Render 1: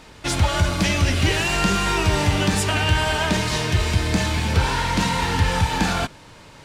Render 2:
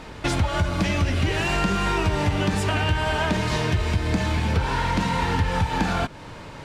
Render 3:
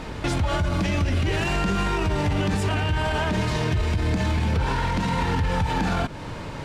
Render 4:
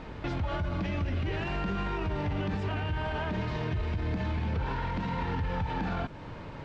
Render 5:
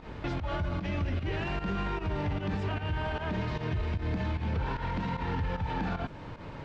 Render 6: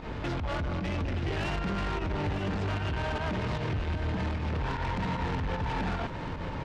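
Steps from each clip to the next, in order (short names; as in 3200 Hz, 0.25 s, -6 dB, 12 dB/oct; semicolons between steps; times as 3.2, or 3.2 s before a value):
high shelf 3300 Hz -10 dB; compressor 3:1, threshold -29 dBFS, peak gain reduction 12.5 dB; gain +7 dB
low shelf 440 Hz +4 dB; limiter -18.5 dBFS, peak gain reduction 11 dB; gain +3 dB
added noise violet -42 dBFS; Gaussian blur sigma 2 samples; gain -8 dB
pump 151 bpm, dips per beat 1, -13 dB, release 0.1 s
soft clip -35.5 dBFS, distortion -9 dB; echo 0.932 s -9 dB; gain +7 dB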